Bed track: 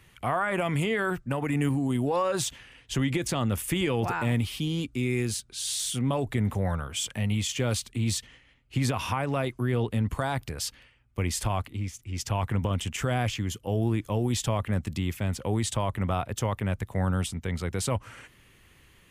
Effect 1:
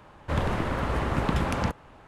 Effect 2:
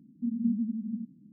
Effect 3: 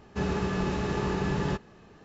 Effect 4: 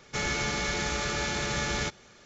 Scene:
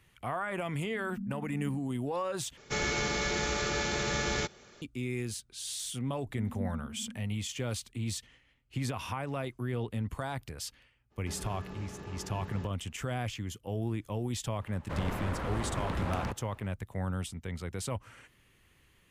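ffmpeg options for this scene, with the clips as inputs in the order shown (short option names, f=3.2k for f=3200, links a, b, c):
-filter_complex "[2:a]asplit=2[a][b];[0:a]volume=-7.5dB[c];[a]asuperpass=centerf=190:order=4:qfactor=6.1[d];[4:a]equalizer=f=420:t=o:w=0.76:g=4[e];[1:a]asoftclip=type=tanh:threshold=-21.5dB[f];[c]asplit=2[g][h];[g]atrim=end=2.574[i];[e]atrim=end=2.25,asetpts=PTS-STARTPTS,volume=-2dB[j];[h]atrim=start=4.816[k];[d]atrim=end=1.32,asetpts=PTS-STARTPTS,volume=-2.5dB,afade=t=in:d=0.004:c=hsin,afade=t=out:st=1.316:d=0.004:c=hsin,adelay=720[l];[b]atrim=end=1.32,asetpts=PTS-STARTPTS,volume=-10.5dB,afade=t=in:d=0.004:c=hsin,afade=t=out:st=1.316:d=0.004:c=hsin,adelay=6150[m];[3:a]atrim=end=2.04,asetpts=PTS-STARTPTS,volume=-15.5dB,afade=t=in:d=0.02,afade=t=out:st=2.02:d=0.02,adelay=11100[n];[f]atrim=end=2.07,asetpts=PTS-STARTPTS,volume=-6dB,afade=t=in:d=0.004:c=hsin,afade=t=out:st=2.066:d=0.004:c=hsin,adelay=14610[o];[i][j]acrossfade=d=0.004:c1=hsin:c2=hsin[p];[p][k]acrossfade=d=0.004:c1=hsin:c2=hsin[q];[q][l][m][n][o]amix=inputs=5:normalize=0"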